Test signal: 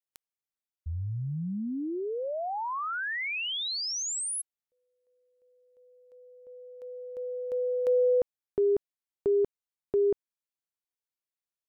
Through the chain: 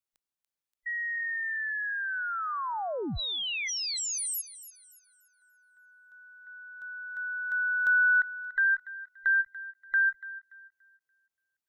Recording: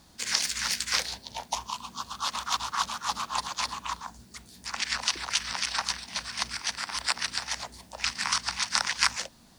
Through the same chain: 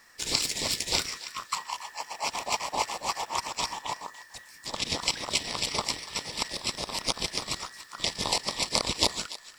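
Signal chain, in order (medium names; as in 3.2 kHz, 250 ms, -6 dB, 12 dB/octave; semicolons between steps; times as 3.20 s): every band turned upside down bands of 2 kHz; thinning echo 288 ms, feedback 35%, high-pass 1.1 kHz, level -15 dB; endings held to a fixed fall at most 600 dB/s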